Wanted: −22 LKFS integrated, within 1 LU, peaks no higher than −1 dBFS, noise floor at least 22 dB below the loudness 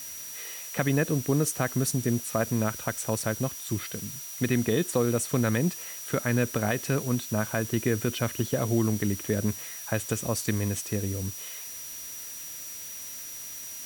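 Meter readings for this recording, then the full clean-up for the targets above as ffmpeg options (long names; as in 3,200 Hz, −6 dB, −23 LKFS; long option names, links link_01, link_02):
interfering tone 5,800 Hz; level of the tone −41 dBFS; background noise floor −40 dBFS; target noise floor −51 dBFS; integrated loudness −29.0 LKFS; sample peak −13.0 dBFS; target loudness −22.0 LKFS
→ -af "bandreject=frequency=5800:width=30"
-af "afftdn=noise_reduction=11:noise_floor=-40"
-af "volume=7dB"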